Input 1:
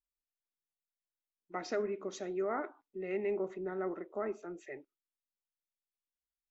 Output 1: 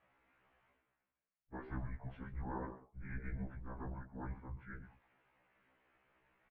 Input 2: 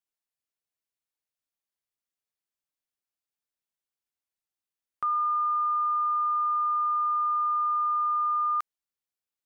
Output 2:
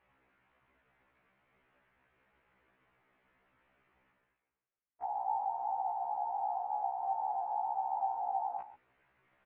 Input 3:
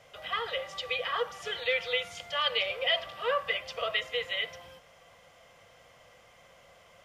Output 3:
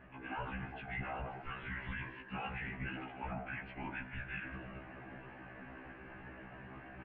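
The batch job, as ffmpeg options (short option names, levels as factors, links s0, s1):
-filter_complex "[0:a]areverse,acompressor=mode=upward:threshold=0.0224:ratio=2.5,areverse,highpass=f=350:t=q:w=0.5412,highpass=f=350:t=q:w=1.307,lowpass=f=2700:t=q:w=0.5176,lowpass=f=2700:t=q:w=0.7071,lowpass=f=2700:t=q:w=1.932,afreqshift=-400,alimiter=level_in=1.78:limit=0.0631:level=0:latency=1:release=17,volume=0.562,asplit=2[s0][s1];[s1]aecho=0:1:132:0.188[s2];[s0][s2]amix=inputs=2:normalize=0,afftfilt=real='hypot(re,im)*cos(2*PI*random(0))':imag='hypot(re,im)*sin(2*PI*random(1))':win_size=512:overlap=0.75,afftfilt=real='re*1.73*eq(mod(b,3),0)':imag='im*1.73*eq(mod(b,3),0)':win_size=2048:overlap=0.75,volume=1.58"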